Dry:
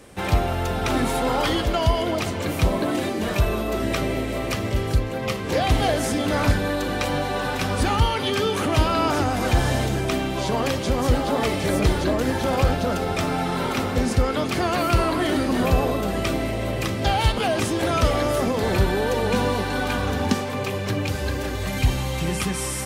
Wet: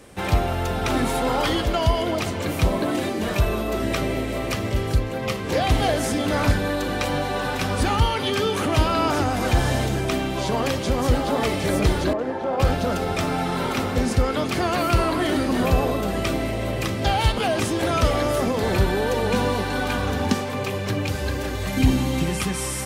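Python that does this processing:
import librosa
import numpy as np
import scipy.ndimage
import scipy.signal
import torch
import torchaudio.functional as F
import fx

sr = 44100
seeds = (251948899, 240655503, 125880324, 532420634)

y = fx.bandpass_q(x, sr, hz=620.0, q=0.84, at=(12.13, 12.6))
y = fx.peak_eq(y, sr, hz=260.0, db=13.5, octaves=0.71, at=(21.77, 22.24))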